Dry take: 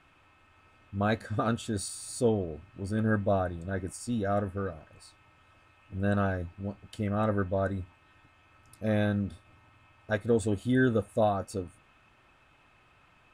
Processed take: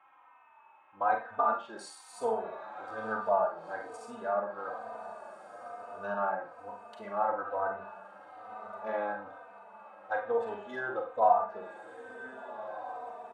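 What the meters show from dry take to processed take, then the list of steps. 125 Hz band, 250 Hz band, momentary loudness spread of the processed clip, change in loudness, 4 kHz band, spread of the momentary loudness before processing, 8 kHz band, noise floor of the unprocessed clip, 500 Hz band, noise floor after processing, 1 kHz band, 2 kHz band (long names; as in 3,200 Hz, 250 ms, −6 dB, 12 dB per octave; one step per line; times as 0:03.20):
below −25 dB, −17.5 dB, 18 LU, −3.0 dB, below −10 dB, 12 LU, below −10 dB, −62 dBFS, −2.5 dB, −59 dBFS, +6.0 dB, −2.0 dB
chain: adaptive Wiener filter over 9 samples
high-pass with resonance 890 Hz, resonance Q 4.3
spectral tilt −2.5 dB per octave
feedback delay with all-pass diffusion 1,523 ms, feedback 43%, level −12 dB
treble cut that deepens with the level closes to 1,700 Hz, closed at −26 dBFS
four-comb reverb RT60 0.34 s, combs from 32 ms, DRR 3 dB
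barber-pole flanger 3.2 ms −1.1 Hz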